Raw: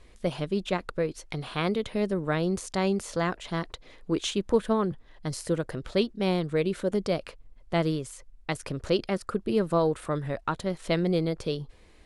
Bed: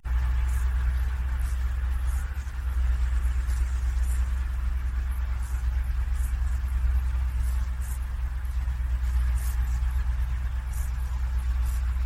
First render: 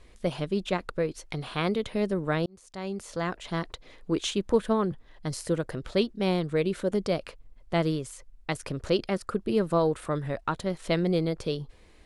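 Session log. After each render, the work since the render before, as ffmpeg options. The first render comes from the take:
ffmpeg -i in.wav -filter_complex "[0:a]asplit=2[link_01][link_02];[link_01]atrim=end=2.46,asetpts=PTS-STARTPTS,afade=type=out:start_time=2.456:duration=0.004:curve=hsin[link_03];[link_02]atrim=start=2.46,asetpts=PTS-STARTPTS,afade=type=in:duration=1.08[link_04];[link_03][link_04]concat=n=2:v=0:a=1" out.wav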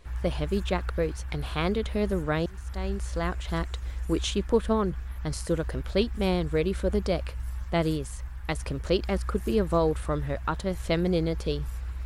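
ffmpeg -i in.wav -i bed.wav -filter_complex "[1:a]volume=-7.5dB[link_01];[0:a][link_01]amix=inputs=2:normalize=0" out.wav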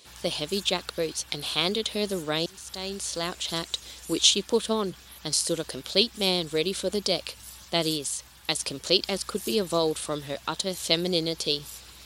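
ffmpeg -i in.wav -af "highpass=220,highshelf=frequency=2600:width_type=q:width=1.5:gain=12.5" out.wav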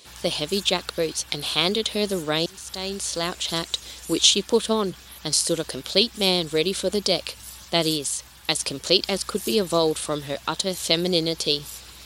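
ffmpeg -i in.wav -af "volume=4dB,alimiter=limit=-3dB:level=0:latency=1" out.wav

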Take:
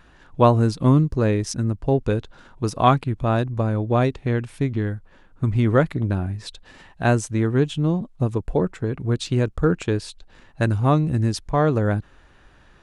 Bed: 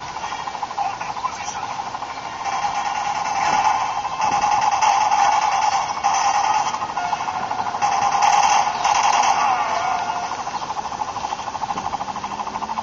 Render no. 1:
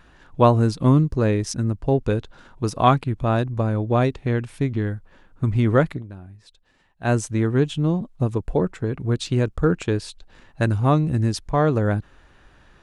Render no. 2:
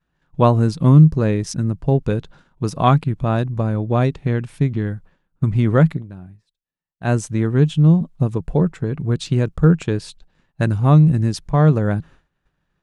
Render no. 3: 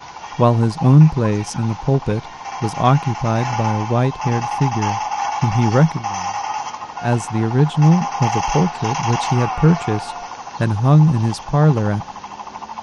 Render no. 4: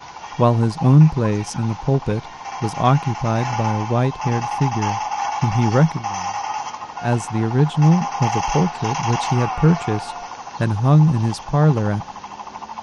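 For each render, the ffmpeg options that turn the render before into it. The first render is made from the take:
ffmpeg -i in.wav -filter_complex "[0:a]asplit=3[link_01][link_02][link_03];[link_01]atrim=end=6.03,asetpts=PTS-STARTPTS,afade=type=out:start_time=5.86:duration=0.17:curve=qsin:silence=0.16788[link_04];[link_02]atrim=start=6.03:end=7.01,asetpts=PTS-STARTPTS,volume=-15.5dB[link_05];[link_03]atrim=start=7.01,asetpts=PTS-STARTPTS,afade=type=in:duration=0.17:curve=qsin:silence=0.16788[link_06];[link_04][link_05][link_06]concat=n=3:v=0:a=1" out.wav
ffmpeg -i in.wav -af "equalizer=frequency=160:width=3.1:gain=11.5,agate=range=-33dB:threshold=-37dB:ratio=3:detection=peak" out.wav
ffmpeg -i in.wav -i bed.wav -filter_complex "[1:a]volume=-5.5dB[link_01];[0:a][link_01]amix=inputs=2:normalize=0" out.wav
ffmpeg -i in.wav -af "volume=-1.5dB" out.wav

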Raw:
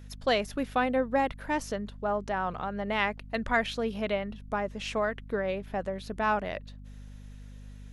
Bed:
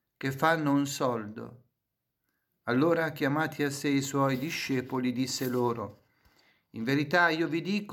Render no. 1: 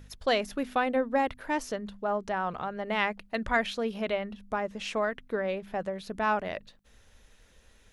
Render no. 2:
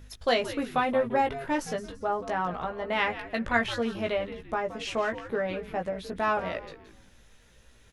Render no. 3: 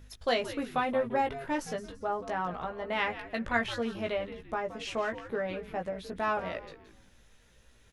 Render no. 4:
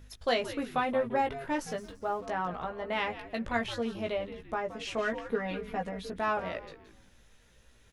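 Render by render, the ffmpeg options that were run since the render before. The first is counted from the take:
ffmpeg -i in.wav -af "bandreject=frequency=50:width_type=h:width=4,bandreject=frequency=100:width_type=h:width=4,bandreject=frequency=150:width_type=h:width=4,bandreject=frequency=200:width_type=h:width=4,bandreject=frequency=250:width_type=h:width=4" out.wav
ffmpeg -i in.wav -filter_complex "[0:a]asplit=2[link_01][link_02];[link_02]adelay=17,volume=-4.5dB[link_03];[link_01][link_03]amix=inputs=2:normalize=0,asplit=5[link_04][link_05][link_06][link_07][link_08];[link_05]adelay=170,afreqshift=-130,volume=-13dB[link_09];[link_06]adelay=340,afreqshift=-260,volume=-21.4dB[link_10];[link_07]adelay=510,afreqshift=-390,volume=-29.8dB[link_11];[link_08]adelay=680,afreqshift=-520,volume=-38.2dB[link_12];[link_04][link_09][link_10][link_11][link_12]amix=inputs=5:normalize=0" out.wav
ffmpeg -i in.wav -af "volume=-3.5dB" out.wav
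ffmpeg -i in.wav -filter_complex "[0:a]asplit=3[link_01][link_02][link_03];[link_01]afade=type=out:start_time=1.7:duration=0.02[link_04];[link_02]aeval=exprs='sgn(val(0))*max(abs(val(0))-0.00133,0)':channel_layout=same,afade=type=in:start_time=1.7:duration=0.02,afade=type=out:start_time=2.25:duration=0.02[link_05];[link_03]afade=type=in:start_time=2.25:duration=0.02[link_06];[link_04][link_05][link_06]amix=inputs=3:normalize=0,asettb=1/sr,asplit=3[link_07][link_08][link_09];[link_07]atrim=end=2.994[link_10];[link_08]atrim=start=2.99:end=4.34,asetpts=PTS-STARTPTS,afade=type=in:duration=0.004:curve=qsin,afade=type=out:start_time=1.346:duration=0.004:curve=qsin,equalizer=frequency=1600:width=1.5:gain=-5[link_11];[link_09]atrim=start=4.336[link_12];[link_10][link_11]acrossfade=duration=0.004:curve1=hsin:curve2=qsin[link_13];[link_13][link_12]acrossfade=duration=0.004:curve1=qsin:curve2=hsin,asettb=1/sr,asplit=3[link_14][link_15][link_16];[link_14]atrim=end=4.984[link_17];[link_15]atrim=start=4.98:end=6.1,asetpts=PTS-STARTPTS,afade=type=in:duration=0.004:curve=qsin,afade=type=out:start_time=1.116:duration=0.004:curve=qsin,aecho=1:1:4.2:0.82,atrim=end_sample=49392[link_18];[link_16]atrim=start=6.096[link_19];[link_17][link_18]acrossfade=duration=0.004:curve1=hsin:curve2=qsin[link_20];[link_20][link_19]acrossfade=duration=0.004:curve1=qsin:curve2=hsin" out.wav

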